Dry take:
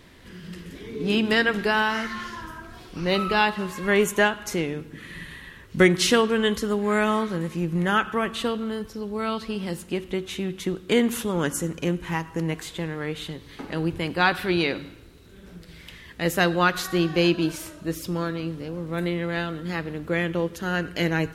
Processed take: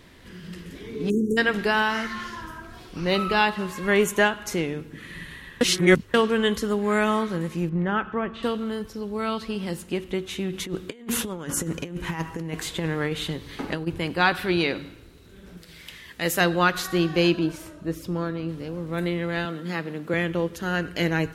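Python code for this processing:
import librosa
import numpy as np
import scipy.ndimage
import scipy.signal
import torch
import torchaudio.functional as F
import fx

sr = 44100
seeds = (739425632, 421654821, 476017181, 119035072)

y = fx.spec_erase(x, sr, start_s=1.1, length_s=0.28, low_hz=560.0, high_hz=5600.0)
y = fx.spacing_loss(y, sr, db_at_10k=32, at=(7.69, 8.43))
y = fx.over_compress(y, sr, threshold_db=-29.0, ratio=-0.5, at=(10.52, 13.86), fade=0.02)
y = fx.tilt_eq(y, sr, slope=1.5, at=(15.57, 16.41))
y = fx.high_shelf(y, sr, hz=2000.0, db=-8.0, at=(17.39, 18.49))
y = fx.highpass(y, sr, hz=140.0, slope=24, at=(19.45, 20.14))
y = fx.edit(y, sr, fx.reverse_span(start_s=5.61, length_s=0.53), tone=tone)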